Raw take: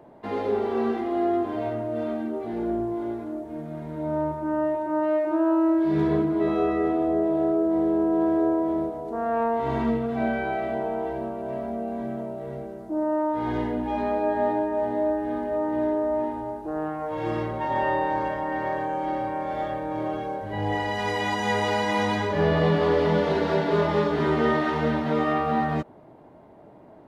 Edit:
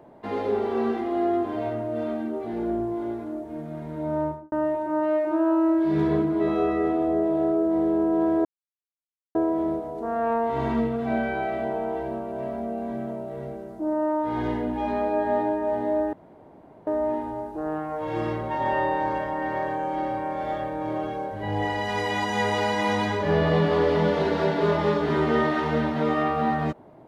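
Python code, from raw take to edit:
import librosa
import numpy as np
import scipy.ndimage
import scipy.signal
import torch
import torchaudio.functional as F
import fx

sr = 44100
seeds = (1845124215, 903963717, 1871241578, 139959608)

y = fx.studio_fade_out(x, sr, start_s=4.24, length_s=0.28)
y = fx.edit(y, sr, fx.insert_silence(at_s=8.45, length_s=0.9),
    fx.room_tone_fill(start_s=15.23, length_s=0.74), tone=tone)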